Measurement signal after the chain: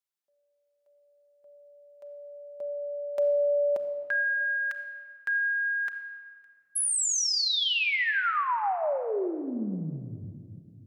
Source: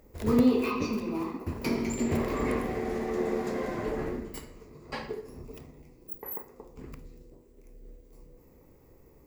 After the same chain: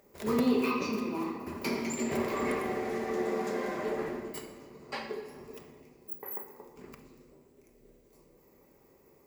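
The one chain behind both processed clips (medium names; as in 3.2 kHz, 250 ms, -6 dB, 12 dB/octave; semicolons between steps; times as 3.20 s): high-pass 420 Hz 6 dB/octave; simulated room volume 3900 m³, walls mixed, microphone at 1.2 m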